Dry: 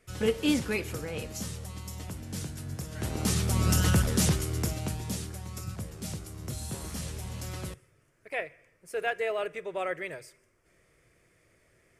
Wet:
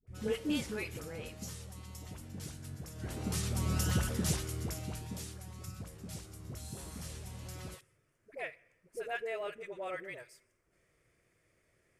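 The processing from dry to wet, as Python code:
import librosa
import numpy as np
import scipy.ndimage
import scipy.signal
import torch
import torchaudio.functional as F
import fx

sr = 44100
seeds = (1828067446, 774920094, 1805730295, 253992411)

y = fx.cheby_harmonics(x, sr, harmonics=(8,), levels_db=(-43,), full_scale_db=-16.0)
y = fx.dispersion(y, sr, late='highs', ms=72.0, hz=570.0)
y = F.gain(torch.from_numpy(y), -7.5).numpy()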